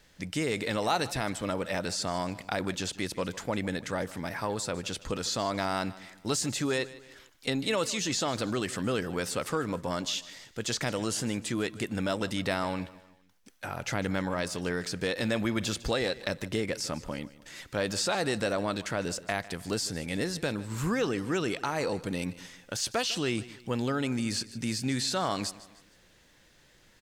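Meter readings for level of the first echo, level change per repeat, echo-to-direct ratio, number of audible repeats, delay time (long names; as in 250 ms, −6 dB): −18.0 dB, −7.5 dB, −17.0 dB, 3, 153 ms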